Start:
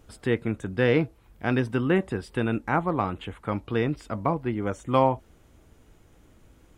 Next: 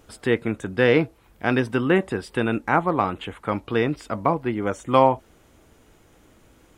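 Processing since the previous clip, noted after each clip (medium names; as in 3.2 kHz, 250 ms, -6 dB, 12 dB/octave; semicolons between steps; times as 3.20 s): bass shelf 170 Hz -9 dB; trim +5.5 dB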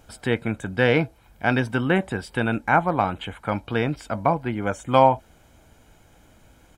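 comb 1.3 ms, depth 44%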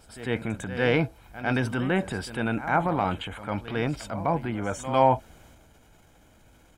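transient shaper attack -4 dB, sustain +6 dB; pre-echo 101 ms -13.5 dB; trim -3.5 dB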